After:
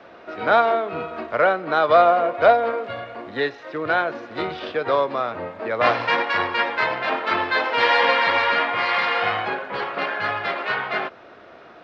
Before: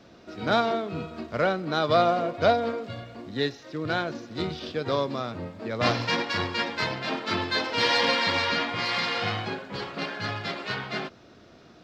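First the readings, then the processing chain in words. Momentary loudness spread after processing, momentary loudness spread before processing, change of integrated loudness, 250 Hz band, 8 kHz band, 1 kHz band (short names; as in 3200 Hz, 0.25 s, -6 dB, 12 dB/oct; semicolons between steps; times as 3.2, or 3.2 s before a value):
12 LU, 12 LU, +6.0 dB, -1.5 dB, n/a, +8.5 dB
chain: three-band isolator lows -17 dB, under 440 Hz, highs -22 dB, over 2700 Hz; in parallel at -2.5 dB: compressor, threshold -37 dBFS, peak gain reduction 18 dB; on the sum: gain +7.5 dB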